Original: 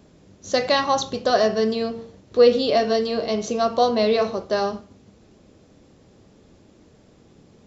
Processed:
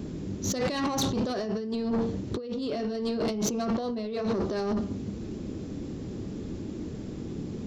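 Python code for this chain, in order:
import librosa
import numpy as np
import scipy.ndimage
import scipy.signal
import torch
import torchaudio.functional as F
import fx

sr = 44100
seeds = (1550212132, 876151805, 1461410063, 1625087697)

y = fx.low_shelf_res(x, sr, hz=450.0, db=8.0, q=1.5)
y = fx.over_compress(y, sr, threshold_db=-27.0, ratio=-1.0)
y = 10.0 ** (-23.0 / 20.0) * np.tanh(y / 10.0 ** (-23.0 / 20.0))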